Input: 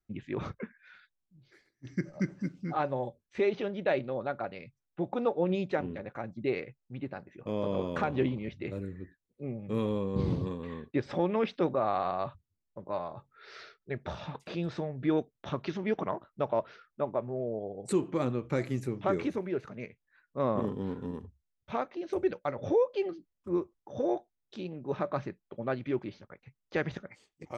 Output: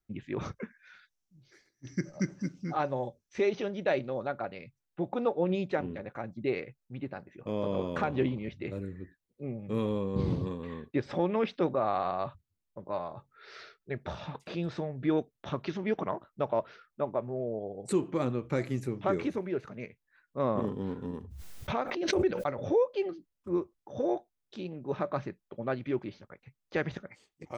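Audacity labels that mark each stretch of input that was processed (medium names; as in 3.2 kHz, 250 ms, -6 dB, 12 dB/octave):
0.410000	4.280000	peaking EQ 5.9 kHz +10.5 dB 0.47 oct
21.130000	22.670000	swell ahead of each attack at most 36 dB/s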